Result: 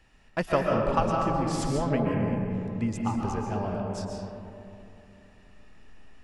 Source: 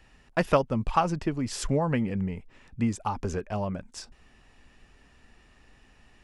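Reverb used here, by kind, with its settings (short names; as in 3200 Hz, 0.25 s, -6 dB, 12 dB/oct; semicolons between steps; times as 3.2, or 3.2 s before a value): digital reverb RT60 2.9 s, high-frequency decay 0.3×, pre-delay 95 ms, DRR -1 dB; gain -3.5 dB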